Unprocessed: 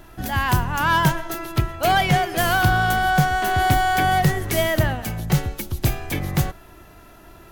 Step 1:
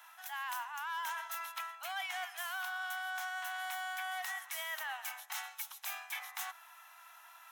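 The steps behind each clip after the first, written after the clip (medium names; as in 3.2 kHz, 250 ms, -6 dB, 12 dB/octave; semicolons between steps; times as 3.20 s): steep high-pass 820 Hz 48 dB/octave; band-stop 4.6 kHz, Q 7.5; reverse; compression 6:1, threshold -33 dBFS, peak gain reduction 15.5 dB; reverse; trim -5 dB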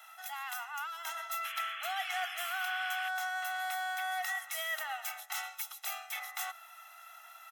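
comb 1.5 ms, depth 100%; painted sound noise, 1.44–3.09 s, 1.1–3.5 kHz -43 dBFS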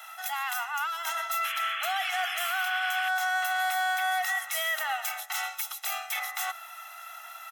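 peak limiter -29.5 dBFS, peak gain reduction 7 dB; trim +9 dB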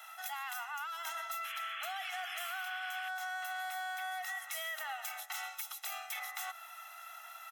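compression, threshold -31 dBFS, peak gain reduction 6.5 dB; trim -6 dB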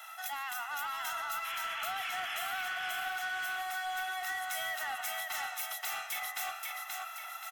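feedback delay 529 ms, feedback 45%, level -3.5 dB; in parallel at -8 dB: wavefolder -36.5 dBFS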